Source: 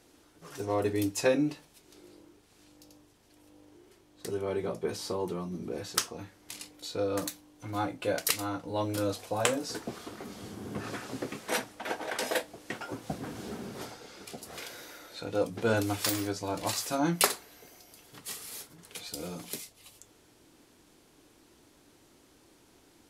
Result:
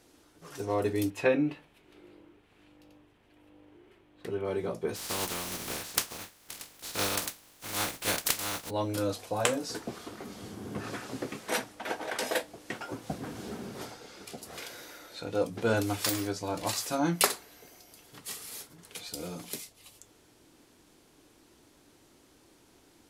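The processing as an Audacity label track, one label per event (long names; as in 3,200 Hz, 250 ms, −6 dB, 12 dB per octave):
1.100000	4.450000	high shelf with overshoot 3,900 Hz −12 dB, Q 1.5
4.950000	8.690000	compressing power law on the bin magnitudes exponent 0.27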